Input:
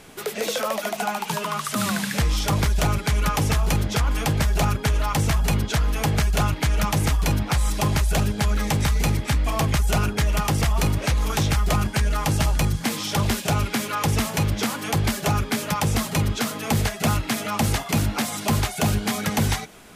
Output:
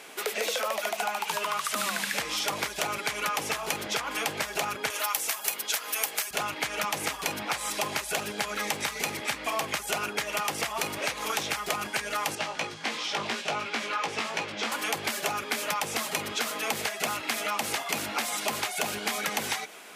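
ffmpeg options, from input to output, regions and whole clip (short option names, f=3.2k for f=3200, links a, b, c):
-filter_complex "[0:a]asettb=1/sr,asplit=3[a][b][c];[a]atrim=end=4.904[d];[b]atrim=start=4.9:end=6.31,asetpts=PTS-STARTPTS,afade=t=in:d=0.004:c=qsin,afade=t=out:st=1.406:d=0.004:c=qsin,highpass=f=340:p=1,aemphasis=mode=production:type=bsi[e];[c]atrim=start=6.306[f];[d][e]acrossfade=d=0.004:c1=hsin:c2=qsin[g];[g][f]acrossfade=d=0.004:c1=qsin:c2=hsin,asettb=1/sr,asplit=3[h][i][j];[h]atrim=end=12.354[k];[i]atrim=start=12.35:end=14.72,asetpts=PTS-STARTPTS,afade=t=in:d=0.004:c=qsin,afade=t=out:st=2.366:d=0.004:c=qsin,flanger=delay=17:depth=2.2:speed=2.9,highpass=110,lowpass=5.2k[l];[j]atrim=start=14.716[m];[k][l]acrossfade=d=0.004:c1=hsin:c2=qsin[n];[n][m]acrossfade=d=0.004:c1=qsin:c2=hsin,highpass=430,equalizer=f=2.4k:t=o:w=0.77:g=3.5,acompressor=threshold=-27dB:ratio=6,volume=1dB"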